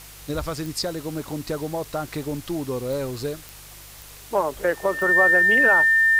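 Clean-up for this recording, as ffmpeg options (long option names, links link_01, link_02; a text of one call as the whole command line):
ffmpeg -i in.wav -af "adeclick=threshold=4,bandreject=frequency=49.5:width_type=h:width=4,bandreject=frequency=99:width_type=h:width=4,bandreject=frequency=148.5:width_type=h:width=4,bandreject=frequency=1800:width=30,afwtdn=0.0071" out.wav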